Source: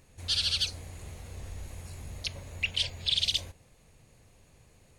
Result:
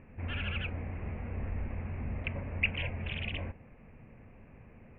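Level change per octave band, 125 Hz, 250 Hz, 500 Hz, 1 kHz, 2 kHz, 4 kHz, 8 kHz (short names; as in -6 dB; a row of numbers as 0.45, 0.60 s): +5.5 dB, +10.0 dB, +5.5 dB, +5.0 dB, +2.0 dB, -16.0 dB, under -40 dB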